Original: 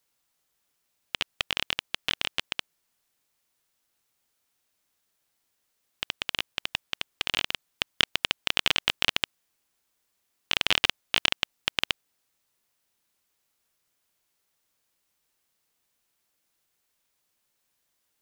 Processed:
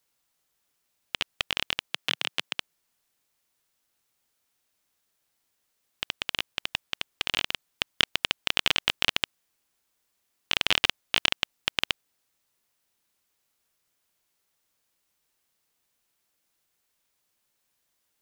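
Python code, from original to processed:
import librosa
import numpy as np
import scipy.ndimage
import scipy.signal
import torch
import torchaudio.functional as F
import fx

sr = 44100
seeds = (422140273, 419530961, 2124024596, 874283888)

y = fx.highpass(x, sr, hz=140.0, slope=24, at=(1.88, 2.58))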